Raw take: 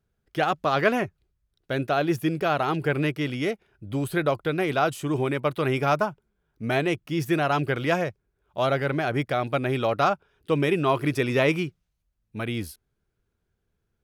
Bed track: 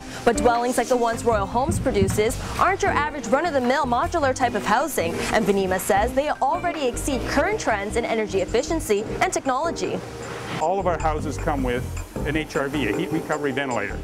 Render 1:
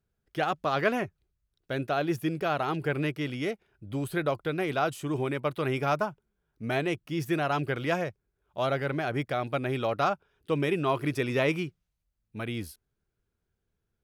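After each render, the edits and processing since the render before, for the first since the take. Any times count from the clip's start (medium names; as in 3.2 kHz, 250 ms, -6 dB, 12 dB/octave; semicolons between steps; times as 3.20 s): trim -4.5 dB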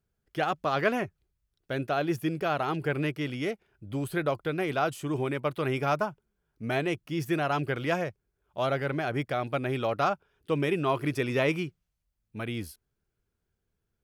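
band-stop 3.8 kHz, Q 26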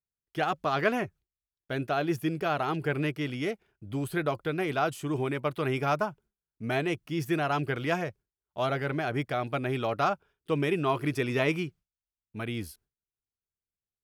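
gate with hold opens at -57 dBFS; band-stop 540 Hz, Q 12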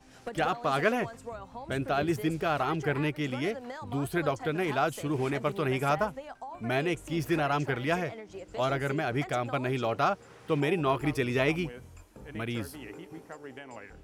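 add bed track -20.5 dB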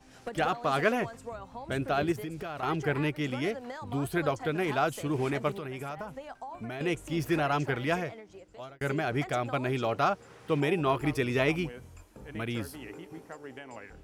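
2.12–2.63 s: compression, threshold -34 dBFS; 5.58–6.81 s: compression 8:1, threshold -34 dBFS; 7.87–8.81 s: fade out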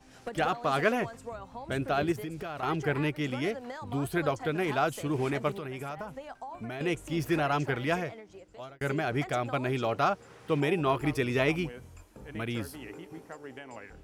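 no audible change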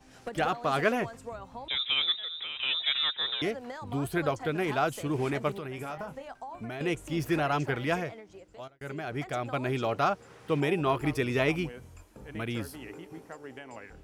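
1.68–3.42 s: frequency inversion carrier 3.8 kHz; 5.75–6.28 s: doubling 25 ms -8 dB; 8.68–9.70 s: fade in, from -12.5 dB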